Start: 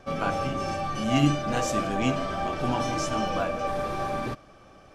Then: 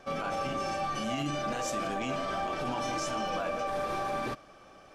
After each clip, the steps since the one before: bass shelf 260 Hz -8 dB; peak limiter -24 dBFS, peak gain reduction 11.5 dB; peaking EQ 97 Hz -6 dB 0.34 oct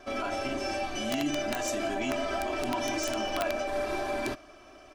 comb 3 ms, depth 96%; integer overflow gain 20.5 dB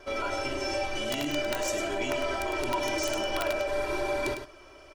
comb 2.1 ms, depth 57%; delay 103 ms -8 dB

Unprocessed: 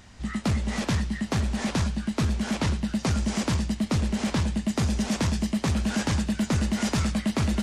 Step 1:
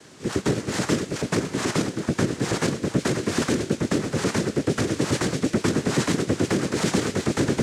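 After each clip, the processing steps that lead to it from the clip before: waveshaping leveller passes 1; noise-vocoded speech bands 3; trim +1.5 dB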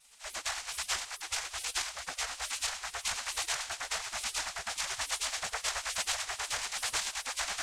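spectral gate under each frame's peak -20 dB weak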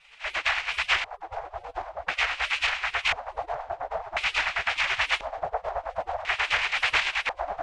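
peaking EQ 230 Hz -11.5 dB 0.41 oct; LFO low-pass square 0.48 Hz 690–2500 Hz; trim +8.5 dB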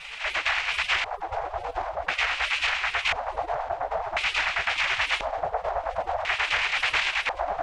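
level flattener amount 50%; trim -2 dB

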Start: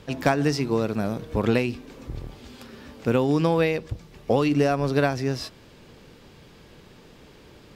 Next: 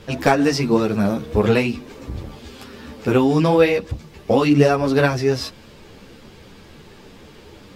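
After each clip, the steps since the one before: three-phase chorus; trim +9 dB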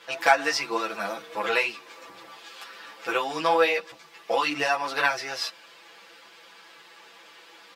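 high-pass 1 kHz 12 dB/octave; treble shelf 4.1 kHz -7 dB; comb 6 ms, depth 87%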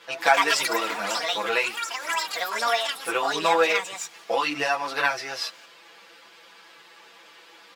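ever faster or slower copies 184 ms, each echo +6 st, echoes 3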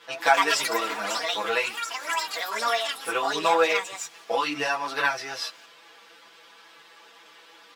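comb of notches 180 Hz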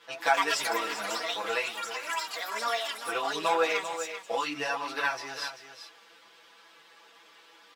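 delay 391 ms -10 dB; trim -5 dB

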